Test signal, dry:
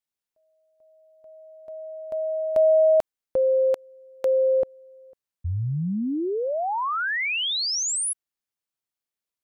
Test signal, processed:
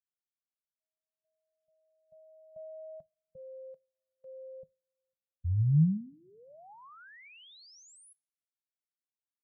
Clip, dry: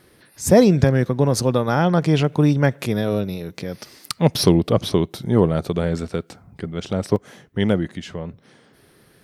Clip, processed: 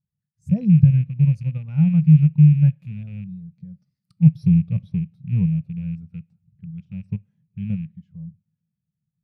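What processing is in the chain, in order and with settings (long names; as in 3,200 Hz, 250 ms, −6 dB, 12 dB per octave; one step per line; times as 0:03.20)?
loose part that buzzes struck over −21 dBFS, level −8 dBFS
in parallel at −2.5 dB: output level in coarse steps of 16 dB
on the sum: low shelf with overshoot 230 Hz +12 dB, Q 3
coupled-rooms reverb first 0.6 s, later 3.7 s, from −18 dB, DRR 16.5 dB
every bin expanded away from the loudest bin 1.5 to 1
level −17.5 dB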